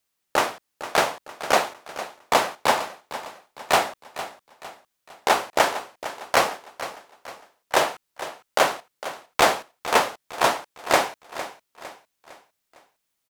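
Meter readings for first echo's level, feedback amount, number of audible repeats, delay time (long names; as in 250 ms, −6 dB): −13.5 dB, 43%, 3, 456 ms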